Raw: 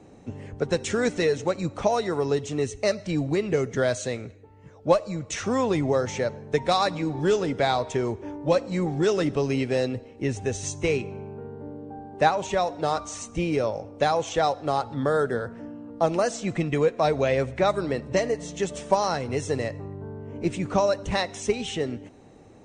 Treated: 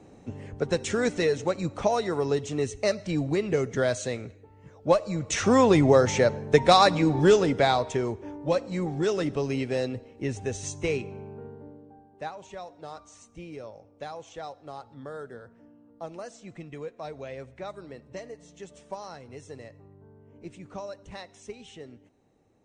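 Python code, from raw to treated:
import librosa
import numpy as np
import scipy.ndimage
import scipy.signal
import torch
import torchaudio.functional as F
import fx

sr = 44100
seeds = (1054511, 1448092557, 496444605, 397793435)

y = fx.gain(x, sr, db=fx.line((4.91, -1.5), (5.49, 5.0), (7.16, 5.0), (8.24, -3.5), (11.46, -3.5), (12.1, -16.0)))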